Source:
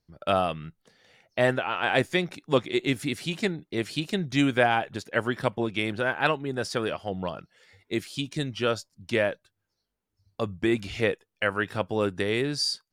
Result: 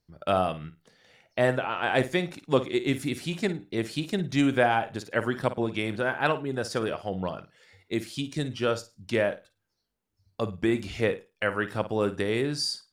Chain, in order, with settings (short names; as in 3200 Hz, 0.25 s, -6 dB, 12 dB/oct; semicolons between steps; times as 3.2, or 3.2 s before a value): flutter echo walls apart 9.2 m, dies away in 0.25 s; dynamic EQ 3000 Hz, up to -4 dB, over -40 dBFS, Q 0.74